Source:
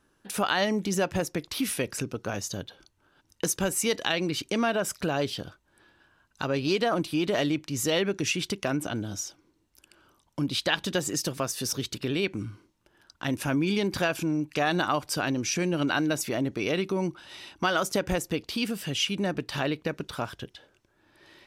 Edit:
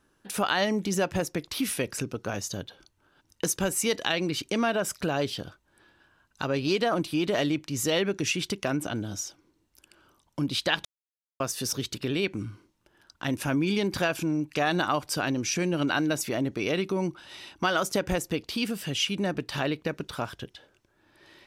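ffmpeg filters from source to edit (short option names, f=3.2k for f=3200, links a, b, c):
-filter_complex "[0:a]asplit=3[a][b][c];[a]atrim=end=10.85,asetpts=PTS-STARTPTS,afade=t=out:st=10.846:d=0.004:c=hsin[d];[b]atrim=start=10.85:end=11.4,asetpts=PTS-STARTPTS,volume=0[e];[c]atrim=start=11.4,asetpts=PTS-STARTPTS,afade=t=in:d=0.004:c=hsin[f];[d][e][f]concat=n=3:v=0:a=1"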